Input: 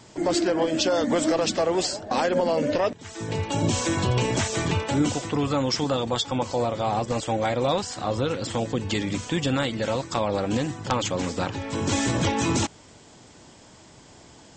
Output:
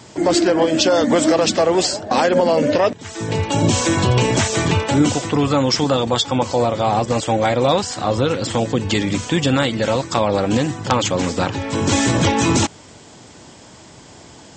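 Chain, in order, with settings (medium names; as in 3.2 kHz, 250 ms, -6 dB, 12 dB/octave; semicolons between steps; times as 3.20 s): high-pass 51 Hz; trim +7.5 dB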